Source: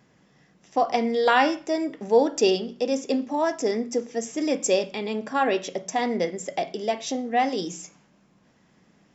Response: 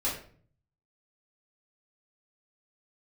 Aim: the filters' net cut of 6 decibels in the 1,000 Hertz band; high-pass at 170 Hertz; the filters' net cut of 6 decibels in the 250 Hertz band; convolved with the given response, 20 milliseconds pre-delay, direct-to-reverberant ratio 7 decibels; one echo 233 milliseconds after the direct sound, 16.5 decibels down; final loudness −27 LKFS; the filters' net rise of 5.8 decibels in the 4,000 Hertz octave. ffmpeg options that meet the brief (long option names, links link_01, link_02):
-filter_complex "[0:a]highpass=170,equalizer=frequency=250:width_type=o:gain=-6,equalizer=frequency=1000:width_type=o:gain=-9,equalizer=frequency=4000:width_type=o:gain=8.5,aecho=1:1:233:0.15,asplit=2[link_01][link_02];[1:a]atrim=start_sample=2205,adelay=20[link_03];[link_02][link_03]afir=irnorm=-1:irlink=0,volume=-14dB[link_04];[link_01][link_04]amix=inputs=2:normalize=0,volume=-0.5dB"